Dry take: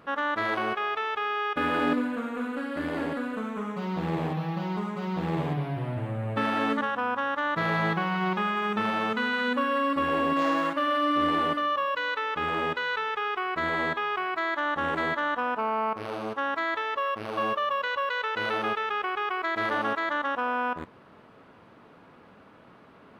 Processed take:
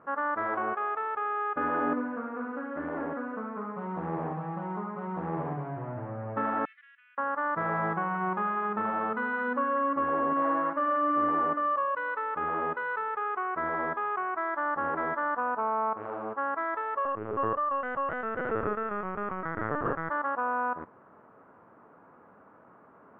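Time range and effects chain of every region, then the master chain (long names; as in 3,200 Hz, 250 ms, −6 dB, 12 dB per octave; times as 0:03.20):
0:06.65–0:07.18: Butterworth high-pass 2,100 Hz 48 dB per octave + high-shelf EQ 3,900 Hz −5.5 dB
0:17.05–0:20.10: Butterworth band-reject 740 Hz, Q 3.3 + low shelf with overshoot 530 Hz +6 dB, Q 1.5 + linear-prediction vocoder at 8 kHz pitch kept
whole clip: low-pass filter 1,400 Hz 24 dB per octave; spectral tilt +2.5 dB per octave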